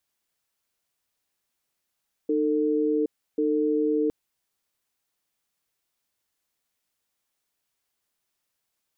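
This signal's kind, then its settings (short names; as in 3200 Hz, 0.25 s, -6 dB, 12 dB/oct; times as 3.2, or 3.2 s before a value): cadence 305 Hz, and 448 Hz, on 0.77 s, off 0.32 s, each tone -23.5 dBFS 1.81 s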